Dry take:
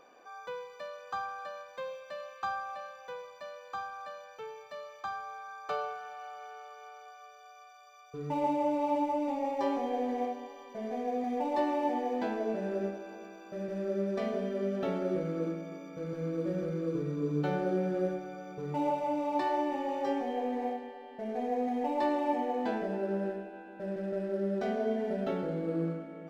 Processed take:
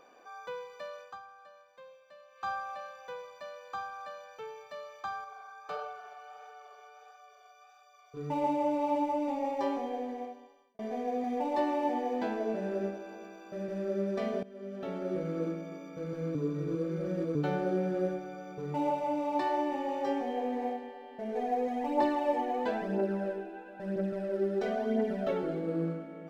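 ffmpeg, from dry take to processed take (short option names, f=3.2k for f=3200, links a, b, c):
-filter_complex "[0:a]asettb=1/sr,asplit=3[a][b][c];[a]atrim=end=5.244[d];[b]atrim=start=5.24:end=8.17,asetpts=PTS-STARTPTS,afade=t=in:d=0.004:c=qsin,afade=t=out:st=2.926:d=0.004:c=qsin,flanger=delay=1.4:depth=7.5:regen=56:speed=1.5:shape=sinusoidal[e];[c]atrim=start=8.166[f];[d][e]acrossfade=d=0.004:c1=hsin:c2=qsin[g];[g][f]acrossfade=d=0.004:c1=qsin:c2=hsin,asplit=3[h][i][j];[h]afade=t=out:st=21.31:d=0.02[k];[i]aphaser=in_gain=1:out_gain=1:delay=3:decay=0.5:speed=1:type=triangular,afade=t=in:st=21.31:d=0.02,afade=t=out:st=25.59:d=0.02[l];[j]afade=t=in:st=25.59:d=0.02[m];[k][l][m]amix=inputs=3:normalize=0,asplit=7[n][o][p][q][r][s][t];[n]atrim=end=1.23,asetpts=PTS-STARTPTS,afade=t=out:st=1.01:d=0.22:c=qua:silence=0.223872[u];[o]atrim=start=1.23:end=2.26,asetpts=PTS-STARTPTS,volume=-13dB[v];[p]atrim=start=2.26:end=10.79,asetpts=PTS-STARTPTS,afade=t=in:d=0.22:c=qua:silence=0.223872,afade=t=out:st=7.28:d=1.25[w];[q]atrim=start=10.79:end=14.43,asetpts=PTS-STARTPTS,afade=t=in:d=0.004:c=hsin,afade=t=out:st=3.636:d=0.004:c=hsin:silence=0.105925[x];[r]atrim=start=14.43:end=16.352,asetpts=PTS-STARTPTS,afade=t=in:d=0.92:silence=0.105925[y];[s]atrim=start=16.348:end=17.352,asetpts=PTS-STARTPTS,areverse[z];[t]atrim=start=17.348[aa];[u][v][w][x][y]concat=n=5:v=0:a=1[ab];[ab][z]acrossfade=d=0.004:c1=hsin:c2=hsin[ac];[ac][aa]acrossfade=d=0.004:c1=hsin:c2=hsin"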